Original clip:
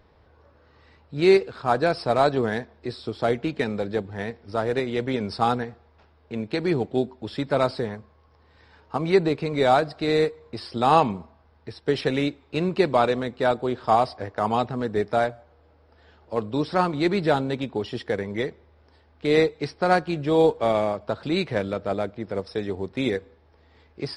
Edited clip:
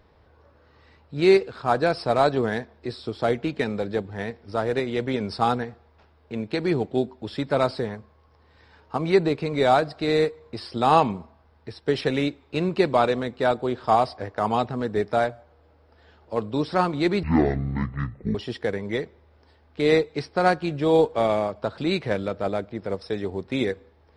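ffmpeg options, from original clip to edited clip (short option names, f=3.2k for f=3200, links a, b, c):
-filter_complex "[0:a]asplit=3[a][b][c];[a]atrim=end=17.234[d];[b]atrim=start=17.23:end=17.8,asetpts=PTS-STARTPTS,asetrate=22491,aresample=44100,atrim=end_sample=49288,asetpts=PTS-STARTPTS[e];[c]atrim=start=17.796[f];[d][e]acrossfade=d=0.004:c1=hsin:c2=hsin[g];[g][f]acrossfade=d=0.004:c1=hsin:c2=hsin"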